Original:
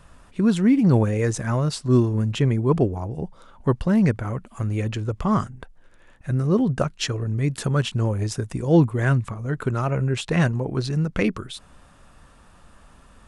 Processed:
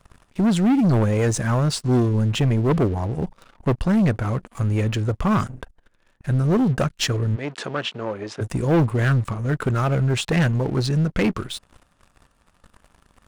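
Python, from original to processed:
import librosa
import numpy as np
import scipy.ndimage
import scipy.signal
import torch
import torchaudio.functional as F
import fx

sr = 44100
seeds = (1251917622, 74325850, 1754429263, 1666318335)

y = fx.leveller(x, sr, passes=3)
y = fx.bandpass_edges(y, sr, low_hz=340.0, high_hz=fx.line((7.35, 4600.0), (8.4, 3100.0)), at=(7.35, 8.4), fade=0.02)
y = y * 10.0 ** (-6.5 / 20.0)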